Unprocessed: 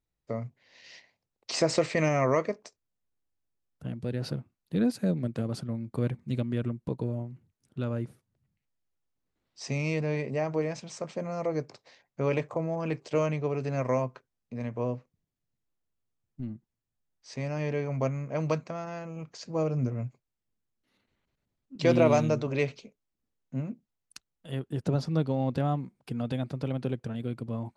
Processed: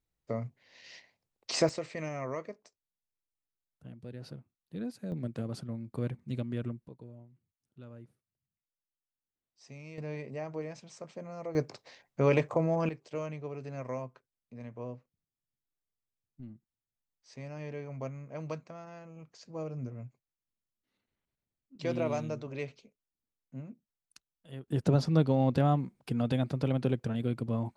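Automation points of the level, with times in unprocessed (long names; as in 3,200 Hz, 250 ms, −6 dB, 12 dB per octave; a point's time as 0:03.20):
−1 dB
from 0:01.69 −12 dB
from 0:05.12 −5 dB
from 0:06.87 −17.5 dB
from 0:09.98 −9 dB
from 0:11.55 +2.5 dB
from 0:12.89 −10 dB
from 0:24.68 +2 dB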